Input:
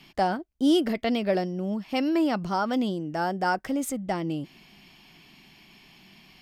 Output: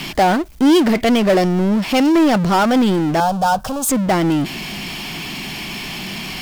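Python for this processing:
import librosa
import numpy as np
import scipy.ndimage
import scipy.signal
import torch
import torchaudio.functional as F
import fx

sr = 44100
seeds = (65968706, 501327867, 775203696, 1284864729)

y = fx.power_curve(x, sr, exponent=0.5)
y = fx.fixed_phaser(y, sr, hz=840.0, stages=4, at=(3.2, 3.89))
y = F.gain(torch.from_numpy(y), 6.5).numpy()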